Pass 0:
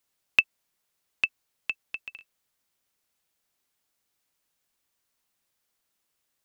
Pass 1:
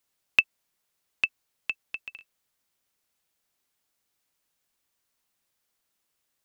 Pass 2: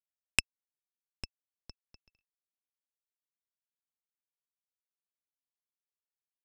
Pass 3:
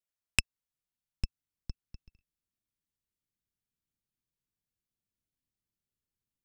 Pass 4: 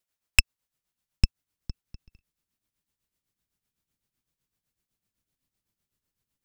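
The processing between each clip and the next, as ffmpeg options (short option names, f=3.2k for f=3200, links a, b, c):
-af anull
-af "aeval=exprs='0.596*(cos(1*acos(clip(val(0)/0.596,-1,1)))-cos(1*PI/2))+0.211*(cos(2*acos(clip(val(0)/0.596,-1,1)))-cos(2*PI/2))+0.266*(cos(3*acos(clip(val(0)/0.596,-1,1)))-cos(3*PI/2))+0.119*(cos(4*acos(clip(val(0)/0.596,-1,1)))-cos(4*PI/2))+0.0376*(cos(5*acos(clip(val(0)/0.596,-1,1)))-cos(5*PI/2))':c=same,volume=-3.5dB"
-af "asubboost=boost=11:cutoff=240"
-af "aeval=exprs='0.891*(cos(1*acos(clip(val(0)/0.891,-1,1)))-cos(1*PI/2))+0.141*(cos(8*acos(clip(val(0)/0.891,-1,1)))-cos(8*PI/2))':c=same,tremolo=f=7.9:d=0.67,aeval=exprs='0.668*sin(PI/2*1.58*val(0)/0.668)':c=same,volume=2.5dB"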